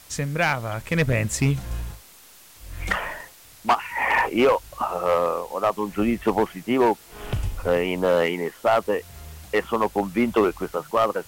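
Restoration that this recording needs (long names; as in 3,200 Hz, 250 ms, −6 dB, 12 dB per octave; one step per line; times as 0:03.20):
clipped peaks rebuilt −12.5 dBFS
broadband denoise 19 dB, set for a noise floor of −48 dBFS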